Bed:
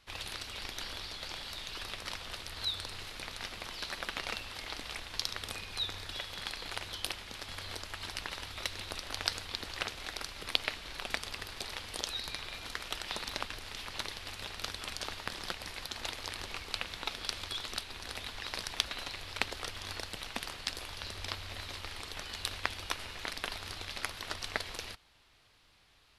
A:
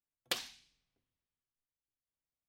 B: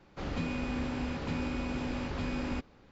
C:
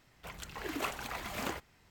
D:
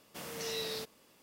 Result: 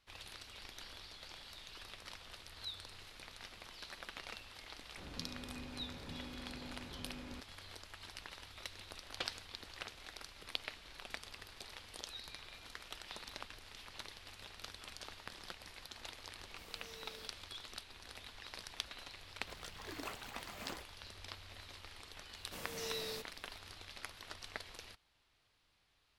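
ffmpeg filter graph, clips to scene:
-filter_complex "[4:a]asplit=2[s0][s1];[0:a]volume=0.299[s2];[1:a]lowpass=4100[s3];[2:a]atrim=end=2.91,asetpts=PTS-STARTPTS,volume=0.178,afade=t=in:d=0.004:c=hsin,afade=t=out:st=2.906:d=0.004:c=hsin,adelay=4800[s4];[s3]atrim=end=2.48,asetpts=PTS-STARTPTS,volume=0.562,afade=t=in:d=0.004:c=hsin,afade=t=out:st=2.476:d=0.004:c=hsin,adelay=8890[s5];[s0]atrim=end=1.22,asetpts=PTS-STARTPTS,volume=0.158,afade=t=in:d=0.004:c=hsin,afade=t=out:st=1.216:d=0.004:c=hsin,adelay=16430[s6];[3:a]atrim=end=1.9,asetpts=PTS-STARTPTS,volume=0.316,afade=t=in:d=0.004:c=hsin,afade=t=out:st=1.896:d=0.004:c=hsin,adelay=19230[s7];[s1]atrim=end=1.22,asetpts=PTS-STARTPTS,volume=0.596,afade=t=in:d=0.004:c=hsin,afade=t=out:st=1.216:d=0.004:c=hsin,adelay=22370[s8];[s2][s4][s5][s6][s7][s8]amix=inputs=6:normalize=0"

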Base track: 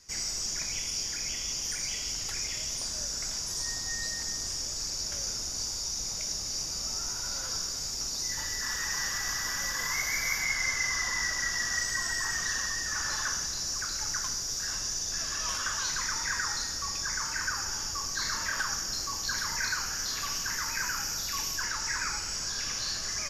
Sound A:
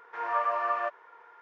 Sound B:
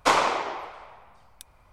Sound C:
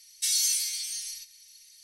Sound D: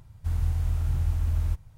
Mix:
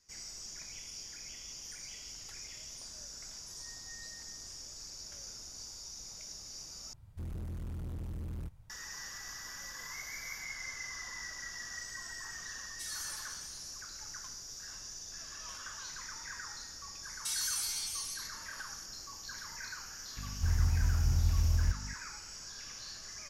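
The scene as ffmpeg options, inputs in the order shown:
-filter_complex "[4:a]asplit=2[s0][s1];[3:a]asplit=2[s2][s3];[0:a]volume=0.224[s4];[s0]volume=35.5,asoftclip=hard,volume=0.0282[s5];[s3]alimiter=limit=0.0891:level=0:latency=1:release=71[s6];[s1]aeval=exprs='val(0)+0.0126*(sin(2*PI*50*n/s)+sin(2*PI*2*50*n/s)/2+sin(2*PI*3*50*n/s)/3+sin(2*PI*4*50*n/s)/4+sin(2*PI*5*50*n/s)/5)':c=same[s7];[s4]asplit=2[s8][s9];[s8]atrim=end=6.934[s10];[s5]atrim=end=1.77,asetpts=PTS-STARTPTS,volume=0.447[s11];[s9]atrim=start=8.696[s12];[s2]atrim=end=1.83,asetpts=PTS-STARTPTS,volume=0.141,afade=t=in:d=0.004:c=hsin,afade=t=out:st=1.826:d=0.004:c=hsin,adelay=12570[s13];[s6]atrim=end=1.83,asetpts=PTS-STARTPTS,volume=0.596,afade=t=in:d=0.004:c=hsin,afade=t=out:st=1.826:d=0.004:c=hsin,adelay=17030[s14];[s7]atrim=end=1.77,asetpts=PTS-STARTPTS,volume=0.708,afade=t=in:d=0.004:c=hsin,afade=t=out:st=1.766:d=0.004:c=hsin,adelay=20170[s15];[s10][s11]acrossfade=d=0.004:c1=hsin:c2=hsin[s16];[s16][s12]acrossfade=d=0.004:c1=hsin:c2=hsin[s17];[s17][s13][s14][s15]amix=inputs=4:normalize=0"

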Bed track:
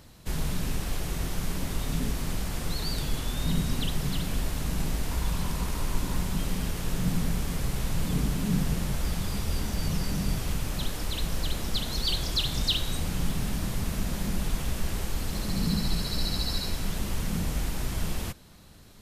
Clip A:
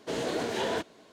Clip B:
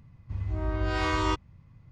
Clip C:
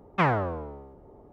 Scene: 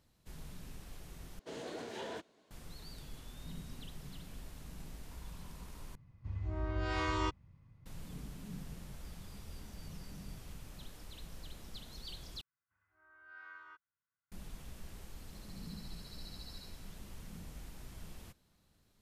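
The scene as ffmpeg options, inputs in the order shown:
-filter_complex "[2:a]asplit=2[s0][s1];[0:a]volume=0.106[s2];[s1]bandpass=f=1500:t=q:w=9.8:csg=0[s3];[s2]asplit=4[s4][s5][s6][s7];[s4]atrim=end=1.394[s8];[1:a]atrim=end=1.12,asetpts=PTS-STARTPTS,volume=0.224[s9];[s5]atrim=start=2.506:end=5.954[s10];[s0]atrim=end=1.91,asetpts=PTS-STARTPTS,volume=0.422[s11];[s6]atrim=start=7.856:end=12.414[s12];[s3]atrim=end=1.91,asetpts=PTS-STARTPTS,volume=0.237[s13];[s7]atrim=start=14.316[s14];[s8][s9]acrossfade=d=0.004:c1=hsin:c2=hsin[s15];[s15][s10]acrossfade=d=0.004:c1=hsin:c2=hsin[s16];[s16][s11]acrossfade=d=0.004:c1=hsin:c2=hsin[s17];[s17][s12]acrossfade=d=0.004:c1=hsin:c2=hsin[s18];[s18][s13]acrossfade=d=0.004:c1=hsin:c2=hsin[s19];[s19][s14]acrossfade=d=0.004:c1=hsin:c2=hsin"

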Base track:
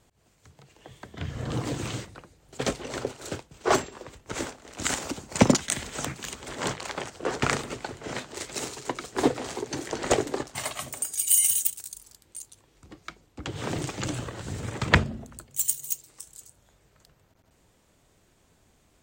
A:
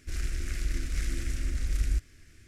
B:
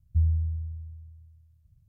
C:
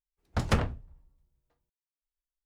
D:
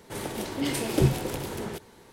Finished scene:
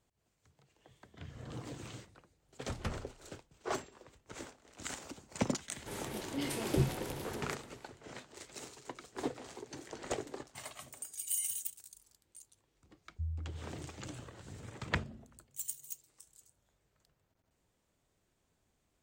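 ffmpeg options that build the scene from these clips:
-filter_complex "[0:a]volume=0.188[s0];[3:a]atrim=end=2.45,asetpts=PTS-STARTPTS,volume=0.224,afade=t=in:d=0.004:c=hsin,afade=t=out:st=2.446:d=0.004:c=hsin,adelay=2330[s1];[4:a]atrim=end=2.12,asetpts=PTS-STARTPTS,volume=0.376,afade=t=in:d=0.004:c=hsin,afade=t=out:st=2.116:d=0.004:c=hsin,adelay=5760[s2];[2:a]atrim=end=1.88,asetpts=PTS-STARTPTS,volume=0.178,afade=t=in:d=0.004:c=hsin,afade=t=out:st=1.876:d=0.004:c=hsin,adelay=13040[s3];[s0][s1][s2][s3]amix=inputs=4:normalize=0"

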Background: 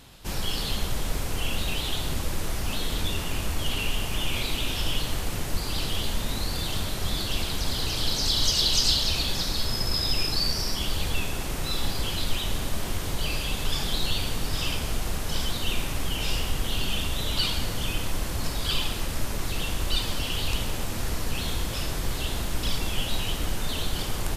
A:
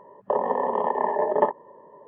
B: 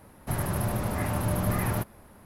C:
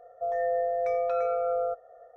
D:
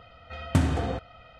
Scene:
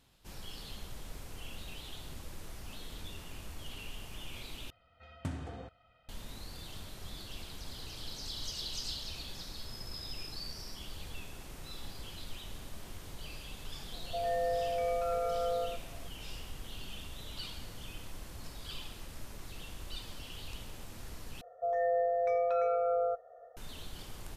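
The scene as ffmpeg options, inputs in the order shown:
-filter_complex "[3:a]asplit=2[s0][s1];[0:a]volume=0.141[s2];[s0]aecho=1:1:100:0.596[s3];[s2]asplit=3[s4][s5][s6];[s4]atrim=end=4.704[s7];[4:a]atrim=end=1.39,asetpts=PTS-STARTPTS,volume=0.158[s8];[s5]atrim=start=6.086:end=21.414[s9];[s1]atrim=end=2.16,asetpts=PTS-STARTPTS,volume=0.75[s10];[s6]atrim=start=23.566[s11];[s3]atrim=end=2.16,asetpts=PTS-STARTPTS,volume=0.501,afade=t=in:d=0.004:c=hsin,afade=t=out:st=2.156:d=0.004:c=hsin,adelay=13920[s12];[s7][s8]acrossfade=d=0.004:c1=hsin:c2=hsin[s13];[s13][s9]acrossfade=d=0.004:c1=hsin:c2=hsin[s14];[s14][s10]acrossfade=d=0.004:c1=hsin:c2=hsin[s15];[s15][s11]acrossfade=d=0.004:c1=hsin:c2=hsin[s16];[s16][s12]amix=inputs=2:normalize=0"

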